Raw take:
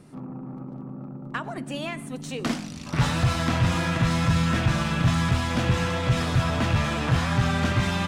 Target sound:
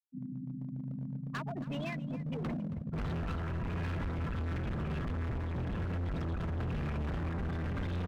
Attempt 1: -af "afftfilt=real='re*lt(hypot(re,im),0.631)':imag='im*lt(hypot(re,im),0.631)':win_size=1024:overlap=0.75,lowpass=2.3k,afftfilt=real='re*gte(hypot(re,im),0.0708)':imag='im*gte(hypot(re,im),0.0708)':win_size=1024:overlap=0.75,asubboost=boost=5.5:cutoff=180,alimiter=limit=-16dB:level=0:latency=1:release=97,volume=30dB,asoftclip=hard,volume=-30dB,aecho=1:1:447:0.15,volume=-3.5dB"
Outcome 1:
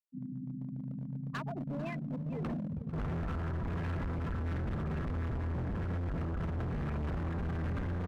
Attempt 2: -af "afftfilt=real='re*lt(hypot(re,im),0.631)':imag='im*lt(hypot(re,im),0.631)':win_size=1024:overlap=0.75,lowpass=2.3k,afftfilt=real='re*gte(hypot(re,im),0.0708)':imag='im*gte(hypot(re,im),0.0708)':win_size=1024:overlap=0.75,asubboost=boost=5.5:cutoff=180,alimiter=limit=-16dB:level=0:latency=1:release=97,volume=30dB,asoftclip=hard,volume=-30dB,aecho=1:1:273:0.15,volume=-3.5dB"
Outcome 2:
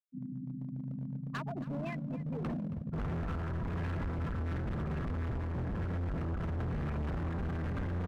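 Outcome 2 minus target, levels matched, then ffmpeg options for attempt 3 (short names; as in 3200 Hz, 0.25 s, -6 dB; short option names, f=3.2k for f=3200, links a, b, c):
8000 Hz band -3.0 dB
-af "afftfilt=real='re*lt(hypot(re,im),0.631)':imag='im*lt(hypot(re,im),0.631)':win_size=1024:overlap=0.75,lowpass=6.8k,afftfilt=real='re*gte(hypot(re,im),0.0708)':imag='im*gte(hypot(re,im),0.0708)':win_size=1024:overlap=0.75,asubboost=boost=5.5:cutoff=180,alimiter=limit=-16dB:level=0:latency=1:release=97,volume=30dB,asoftclip=hard,volume=-30dB,aecho=1:1:273:0.15,volume=-3.5dB"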